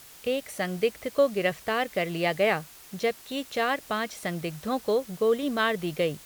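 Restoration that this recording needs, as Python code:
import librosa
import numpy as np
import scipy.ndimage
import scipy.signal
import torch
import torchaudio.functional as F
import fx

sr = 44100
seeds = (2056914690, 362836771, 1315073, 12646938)

y = fx.noise_reduce(x, sr, print_start_s=2.54, print_end_s=3.04, reduce_db=23.0)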